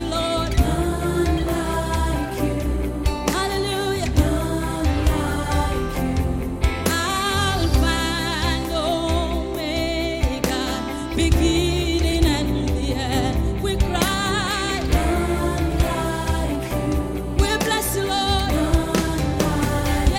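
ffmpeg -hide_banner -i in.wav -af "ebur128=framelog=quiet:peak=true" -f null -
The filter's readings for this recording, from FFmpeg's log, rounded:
Integrated loudness:
  I:         -21.6 LUFS
  Threshold: -31.6 LUFS
Loudness range:
  LRA:         1.4 LU
  Threshold: -41.7 LUFS
  LRA low:   -22.4 LUFS
  LRA high:  -21.0 LUFS
True peak:
  Peak:       -4.0 dBFS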